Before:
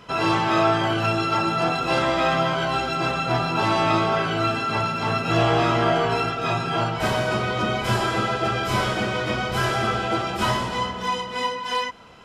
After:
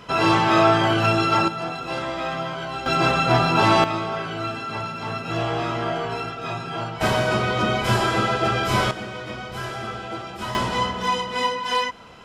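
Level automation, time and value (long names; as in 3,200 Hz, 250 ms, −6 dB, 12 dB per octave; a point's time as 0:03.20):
+3 dB
from 0:01.48 −6.5 dB
from 0:02.86 +4.5 dB
from 0:03.84 −5.5 dB
from 0:07.01 +2 dB
from 0:08.91 −8 dB
from 0:10.55 +2.5 dB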